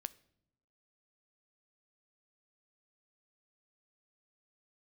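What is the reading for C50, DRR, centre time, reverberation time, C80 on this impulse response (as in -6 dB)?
20.5 dB, 15.5 dB, 2 ms, no single decay rate, 24.0 dB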